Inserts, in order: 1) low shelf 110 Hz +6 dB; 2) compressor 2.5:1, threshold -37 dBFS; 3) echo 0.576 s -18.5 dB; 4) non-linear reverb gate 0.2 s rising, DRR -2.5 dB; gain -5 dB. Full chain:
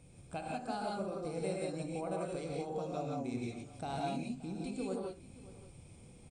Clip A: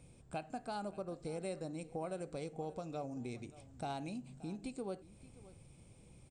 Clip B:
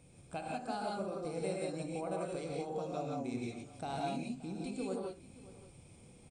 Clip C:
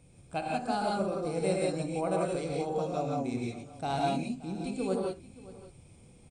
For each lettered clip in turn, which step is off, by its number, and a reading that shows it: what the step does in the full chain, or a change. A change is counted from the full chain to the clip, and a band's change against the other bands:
4, loudness change -4.5 LU; 1, 125 Hz band -2.0 dB; 2, mean gain reduction 4.0 dB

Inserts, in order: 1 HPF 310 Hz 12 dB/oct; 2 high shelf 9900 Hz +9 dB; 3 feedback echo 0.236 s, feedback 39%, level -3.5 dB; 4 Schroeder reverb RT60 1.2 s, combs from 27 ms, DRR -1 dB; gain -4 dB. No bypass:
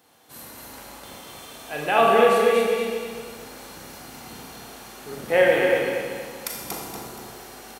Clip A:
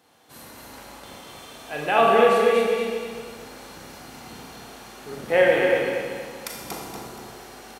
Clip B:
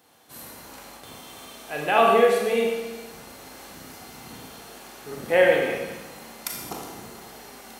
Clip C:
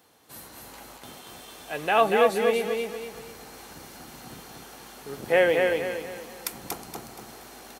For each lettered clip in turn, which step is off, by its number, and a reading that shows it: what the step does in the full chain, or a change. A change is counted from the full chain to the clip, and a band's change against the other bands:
2, 8 kHz band -3.5 dB; 3, momentary loudness spread change +1 LU; 4, echo-to-direct 4.0 dB to -3.0 dB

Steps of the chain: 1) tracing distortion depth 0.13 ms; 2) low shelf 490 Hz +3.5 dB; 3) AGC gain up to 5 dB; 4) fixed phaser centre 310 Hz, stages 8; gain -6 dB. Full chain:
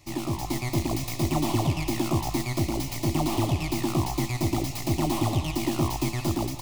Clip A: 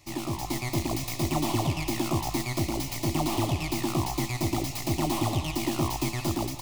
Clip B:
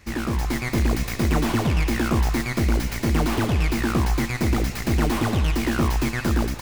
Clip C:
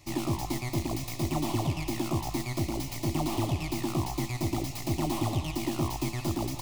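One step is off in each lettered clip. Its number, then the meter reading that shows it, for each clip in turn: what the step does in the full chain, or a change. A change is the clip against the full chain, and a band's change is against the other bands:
2, loudness change -1.5 LU; 4, 2 kHz band +6.5 dB; 3, loudness change -4.0 LU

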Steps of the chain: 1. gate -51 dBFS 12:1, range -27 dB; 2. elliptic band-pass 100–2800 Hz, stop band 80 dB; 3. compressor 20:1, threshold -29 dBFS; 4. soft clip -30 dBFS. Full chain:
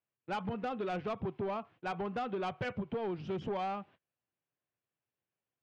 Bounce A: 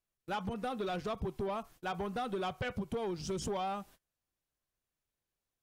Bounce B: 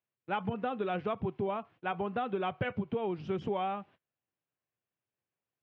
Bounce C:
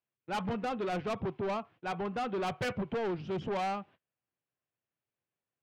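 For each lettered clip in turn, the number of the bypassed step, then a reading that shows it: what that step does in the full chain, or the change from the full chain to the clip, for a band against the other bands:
2, 4 kHz band +4.5 dB; 4, distortion -14 dB; 3, mean gain reduction 5.0 dB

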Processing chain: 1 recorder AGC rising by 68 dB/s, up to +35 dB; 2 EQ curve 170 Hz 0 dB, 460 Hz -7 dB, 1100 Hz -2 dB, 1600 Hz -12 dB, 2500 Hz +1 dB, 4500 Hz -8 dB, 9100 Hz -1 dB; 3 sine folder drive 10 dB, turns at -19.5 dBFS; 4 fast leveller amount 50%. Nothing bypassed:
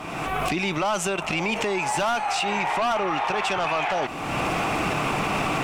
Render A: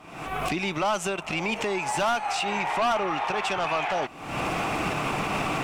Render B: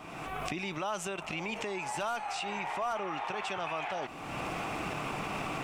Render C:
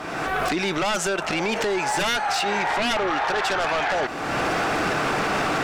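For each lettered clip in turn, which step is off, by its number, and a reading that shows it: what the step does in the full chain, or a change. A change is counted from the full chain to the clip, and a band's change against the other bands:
4, momentary loudness spread change +2 LU; 3, distortion -13 dB; 2, 125 Hz band -4.0 dB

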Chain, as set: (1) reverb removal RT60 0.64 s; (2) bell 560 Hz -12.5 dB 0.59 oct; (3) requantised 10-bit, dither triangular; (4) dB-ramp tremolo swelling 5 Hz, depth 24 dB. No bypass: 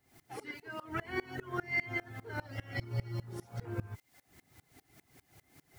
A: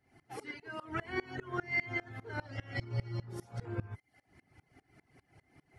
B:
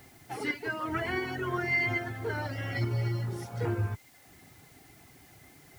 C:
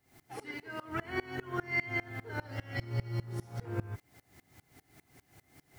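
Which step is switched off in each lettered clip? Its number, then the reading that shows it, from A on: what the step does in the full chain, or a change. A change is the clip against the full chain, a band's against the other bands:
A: 3, distortion -26 dB; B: 4, momentary loudness spread change -3 LU; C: 1, loudness change +1.5 LU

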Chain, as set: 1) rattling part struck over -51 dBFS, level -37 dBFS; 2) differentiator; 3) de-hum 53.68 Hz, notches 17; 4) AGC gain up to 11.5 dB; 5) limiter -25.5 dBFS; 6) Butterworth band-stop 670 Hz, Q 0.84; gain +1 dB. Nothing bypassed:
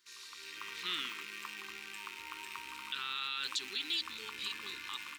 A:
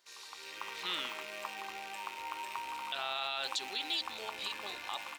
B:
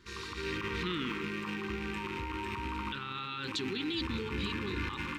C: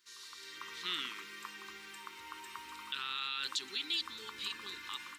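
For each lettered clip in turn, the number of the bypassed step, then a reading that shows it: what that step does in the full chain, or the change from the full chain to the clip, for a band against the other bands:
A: 6, 500 Hz band +9.5 dB; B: 2, 250 Hz band +17.5 dB; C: 1, 2 kHz band -2.0 dB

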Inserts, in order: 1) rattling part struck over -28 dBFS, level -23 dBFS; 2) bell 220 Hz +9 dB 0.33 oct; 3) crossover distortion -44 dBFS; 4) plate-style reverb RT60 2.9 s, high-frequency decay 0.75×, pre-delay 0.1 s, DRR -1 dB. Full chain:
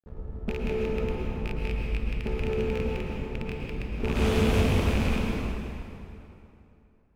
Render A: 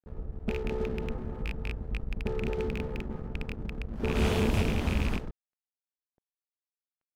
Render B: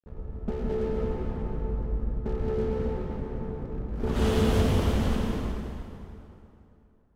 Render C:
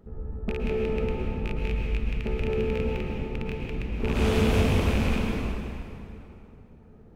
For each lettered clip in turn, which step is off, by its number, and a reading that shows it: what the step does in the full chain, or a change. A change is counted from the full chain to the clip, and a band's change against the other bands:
4, momentary loudness spread change -4 LU; 1, 2 kHz band -6.0 dB; 3, distortion -18 dB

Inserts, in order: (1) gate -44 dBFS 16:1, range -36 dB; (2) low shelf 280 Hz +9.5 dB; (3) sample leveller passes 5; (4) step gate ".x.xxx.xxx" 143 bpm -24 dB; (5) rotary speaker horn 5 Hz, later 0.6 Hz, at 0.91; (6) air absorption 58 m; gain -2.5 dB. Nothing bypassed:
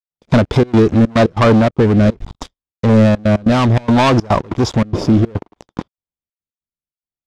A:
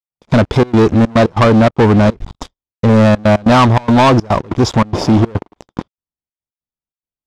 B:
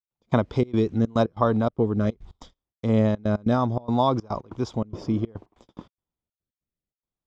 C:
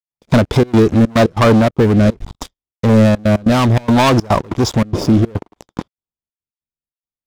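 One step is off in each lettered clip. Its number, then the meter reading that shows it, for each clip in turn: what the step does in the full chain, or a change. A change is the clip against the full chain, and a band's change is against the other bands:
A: 5, 1 kHz band +2.5 dB; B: 3, crest factor change +7.0 dB; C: 6, momentary loudness spread change +4 LU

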